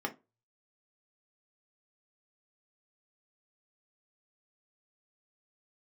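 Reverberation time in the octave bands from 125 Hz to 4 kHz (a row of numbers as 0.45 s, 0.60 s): 0.60 s, 0.25 s, 0.25 s, 0.25 s, 0.20 s, 0.15 s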